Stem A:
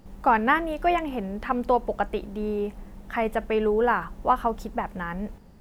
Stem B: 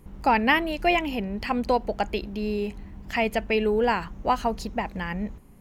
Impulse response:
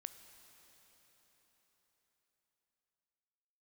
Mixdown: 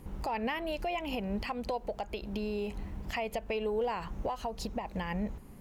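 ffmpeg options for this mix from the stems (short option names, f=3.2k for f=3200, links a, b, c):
-filter_complex "[0:a]acrossover=split=320|750|1900[a][b][c][d];[a]acompressor=threshold=-39dB:ratio=4[e];[b]acompressor=threshold=-25dB:ratio=4[f];[c]acompressor=threshold=-35dB:ratio=4[g];[d]acompressor=threshold=-41dB:ratio=4[h];[e][f][g][h]amix=inputs=4:normalize=0,aeval=exprs='clip(val(0),-1,0.0891)':c=same,volume=-8dB,asplit=2[i][j];[1:a]volume=1.5dB[k];[j]apad=whole_len=247140[l];[k][l]sidechaincompress=threshold=-41dB:ratio=8:attack=29:release=207[m];[i][m]amix=inputs=2:normalize=0,alimiter=level_in=0.5dB:limit=-24dB:level=0:latency=1:release=297,volume=-0.5dB"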